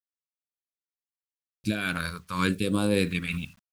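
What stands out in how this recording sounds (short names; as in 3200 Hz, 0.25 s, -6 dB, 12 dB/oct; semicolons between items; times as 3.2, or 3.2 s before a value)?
a quantiser's noise floor 10-bit, dither none; phasing stages 2, 0.81 Hz, lowest notch 300–1700 Hz; noise-modulated level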